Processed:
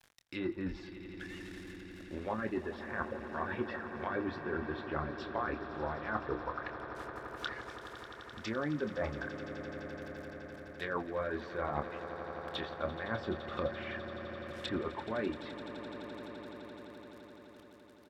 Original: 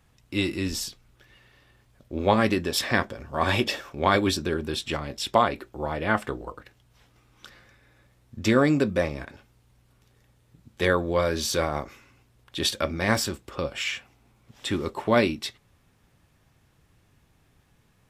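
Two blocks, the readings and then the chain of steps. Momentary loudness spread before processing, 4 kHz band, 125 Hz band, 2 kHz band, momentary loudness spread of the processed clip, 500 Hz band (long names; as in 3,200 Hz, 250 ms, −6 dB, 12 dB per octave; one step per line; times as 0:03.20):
13 LU, −17.0 dB, −12.5 dB, −10.5 dB, 11 LU, −11.0 dB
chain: reverb reduction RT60 0.82 s
graphic EQ with 15 bands 1,600 Hz +11 dB, 4,000 Hz +6 dB, 10,000 Hz −9 dB
reversed playback
downward compressor 12 to 1, threshold −31 dBFS, peak gain reduction 20.5 dB
reversed playback
centre clipping without the shift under −54 dBFS
treble cut that deepens with the level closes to 1,000 Hz, closed at −34.5 dBFS
low-shelf EQ 460 Hz −3.5 dB
mains-hum notches 50/100 Hz
double-tracking delay 27 ms −10 dB
on a send: echo that builds up and dies away 85 ms, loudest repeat 8, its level −15.5 dB
on the sum: level +2 dB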